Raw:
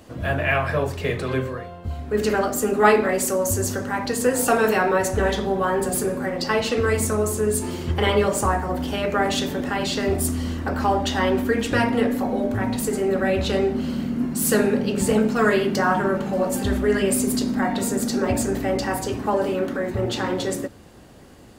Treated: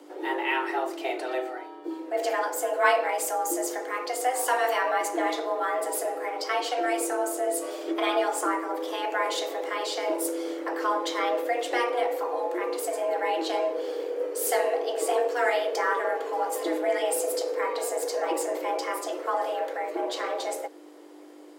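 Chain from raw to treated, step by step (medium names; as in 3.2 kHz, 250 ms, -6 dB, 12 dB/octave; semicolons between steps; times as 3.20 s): hum 50 Hz, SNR 22 dB; frequency shift +250 Hz; trim -6 dB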